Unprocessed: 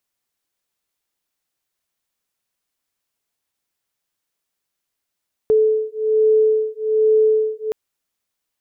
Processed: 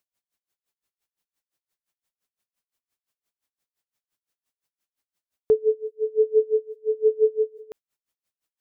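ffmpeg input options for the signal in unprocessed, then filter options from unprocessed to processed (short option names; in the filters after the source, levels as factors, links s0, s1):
-f lavfi -i "aevalsrc='0.15*(sin(2*PI*434*t)+sin(2*PI*435.2*t))':d=2.22:s=44100"
-af "aeval=exprs='val(0)*pow(10,-28*(0.5-0.5*cos(2*PI*5.8*n/s))/20)':c=same"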